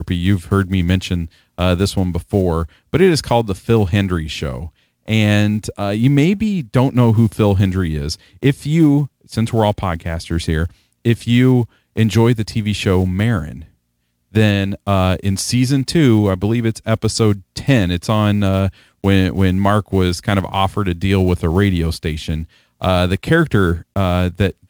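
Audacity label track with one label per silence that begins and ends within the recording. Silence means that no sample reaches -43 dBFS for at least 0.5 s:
13.680000	14.320000	silence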